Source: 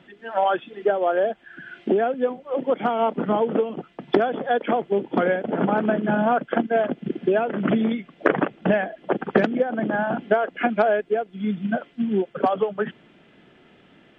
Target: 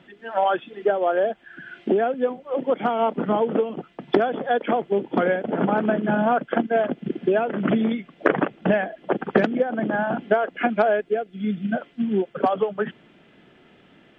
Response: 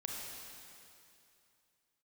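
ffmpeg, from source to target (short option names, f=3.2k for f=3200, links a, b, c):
-filter_complex "[0:a]asettb=1/sr,asplit=3[a][b][c];[a]atrim=end=11.094[d];[b]atrim=start=11.09:end=11.76,asetpts=PTS-STARTPTS,afade=t=in:d=0.004:c=qsin,afade=t=out:st=0.666:d=0.004:c=qsin,equalizer=f=970:w=3.8:g=-12.5[e];[c]atrim=start=11.756[f];[d][e]acrossfade=d=0.004:c1=hsin:c2=qsin[g];[g][f]acrossfade=d=0.004:c1=qsin:c2=hsin"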